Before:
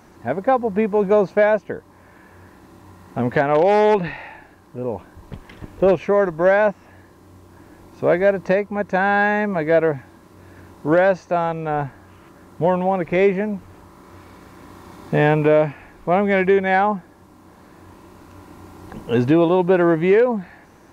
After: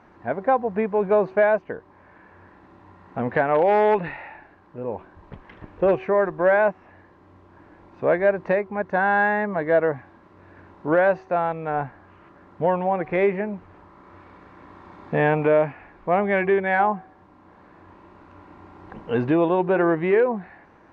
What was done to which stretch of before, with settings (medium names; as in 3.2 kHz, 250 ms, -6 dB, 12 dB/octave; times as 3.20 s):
8.87–9.96 s: band-stop 2.4 kHz, Q 6.6
whole clip: low-pass 2.1 kHz 12 dB/octave; bass shelf 470 Hz -7 dB; de-hum 377.1 Hz, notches 3